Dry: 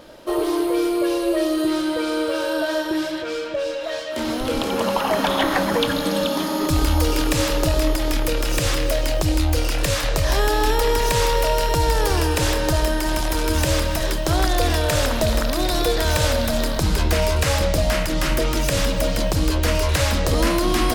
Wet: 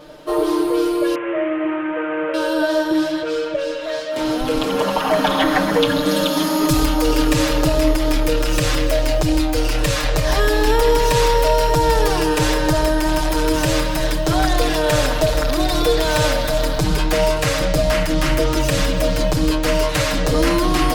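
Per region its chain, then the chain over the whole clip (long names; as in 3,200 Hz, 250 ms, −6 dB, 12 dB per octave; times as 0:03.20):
0:01.15–0:02.34: variable-slope delta modulation 16 kbit/s + low-pass filter 2,400 Hz 24 dB per octave + spectral tilt +3.5 dB per octave
0:06.08–0:06.85: high-shelf EQ 4,200 Hz +7 dB + hard clipping −10 dBFS
whole clip: high-shelf EQ 5,700 Hz −4.5 dB; comb filter 6.6 ms, depth 99%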